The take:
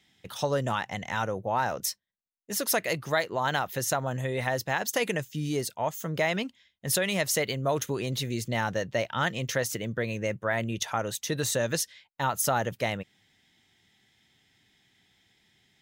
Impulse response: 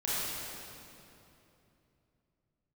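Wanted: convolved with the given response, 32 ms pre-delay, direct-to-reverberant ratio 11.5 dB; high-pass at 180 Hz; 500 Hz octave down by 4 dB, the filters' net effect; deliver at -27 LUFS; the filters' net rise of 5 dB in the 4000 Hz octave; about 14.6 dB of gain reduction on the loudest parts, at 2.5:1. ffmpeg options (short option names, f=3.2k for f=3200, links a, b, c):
-filter_complex "[0:a]highpass=180,equalizer=f=500:t=o:g=-5,equalizer=f=4k:t=o:g=6.5,acompressor=threshold=-45dB:ratio=2.5,asplit=2[a][b];[1:a]atrim=start_sample=2205,adelay=32[c];[b][c]afir=irnorm=-1:irlink=0,volume=-19.5dB[d];[a][d]amix=inputs=2:normalize=0,volume=15dB"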